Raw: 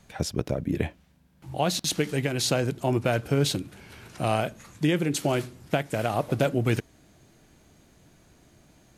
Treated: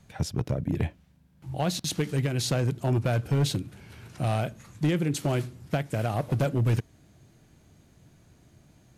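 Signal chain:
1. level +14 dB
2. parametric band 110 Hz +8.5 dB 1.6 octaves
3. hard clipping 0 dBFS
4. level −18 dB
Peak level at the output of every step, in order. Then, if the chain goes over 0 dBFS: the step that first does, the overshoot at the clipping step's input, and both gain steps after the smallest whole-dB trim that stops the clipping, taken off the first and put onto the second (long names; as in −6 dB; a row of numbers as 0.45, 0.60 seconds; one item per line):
+4.0, +7.0, 0.0, −18.0 dBFS
step 1, 7.0 dB
step 1 +7 dB, step 4 −11 dB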